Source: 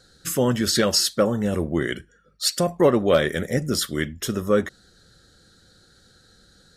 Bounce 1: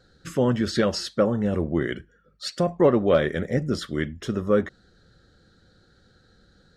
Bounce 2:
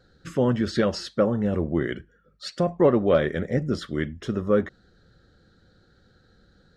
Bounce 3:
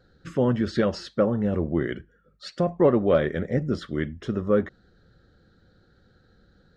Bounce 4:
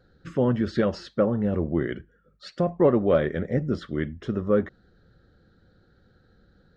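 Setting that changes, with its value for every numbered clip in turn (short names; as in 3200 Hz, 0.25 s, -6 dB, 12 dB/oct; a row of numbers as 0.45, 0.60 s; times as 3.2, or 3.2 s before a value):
tape spacing loss, at 10 kHz: 20, 28, 37, 45 dB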